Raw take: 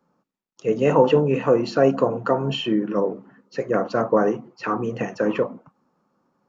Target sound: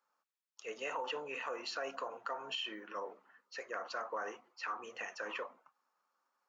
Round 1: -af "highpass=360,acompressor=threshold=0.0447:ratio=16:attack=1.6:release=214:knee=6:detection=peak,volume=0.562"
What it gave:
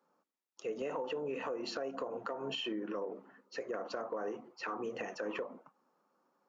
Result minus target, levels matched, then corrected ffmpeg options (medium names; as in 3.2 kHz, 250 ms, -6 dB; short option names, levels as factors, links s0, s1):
500 Hz band +4.0 dB
-af "highpass=1200,acompressor=threshold=0.0447:ratio=16:attack=1.6:release=214:knee=6:detection=peak,volume=0.562"